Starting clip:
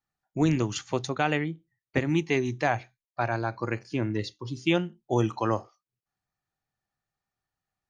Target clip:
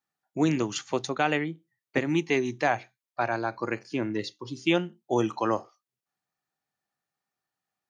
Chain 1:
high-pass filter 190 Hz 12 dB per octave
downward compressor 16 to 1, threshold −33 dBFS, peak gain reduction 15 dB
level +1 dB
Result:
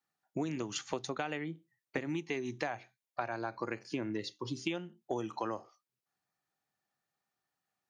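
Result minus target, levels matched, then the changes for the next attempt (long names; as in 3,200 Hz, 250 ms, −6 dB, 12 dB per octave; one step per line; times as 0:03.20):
downward compressor: peak gain reduction +15 dB
remove: downward compressor 16 to 1, threshold −33 dBFS, peak gain reduction 15 dB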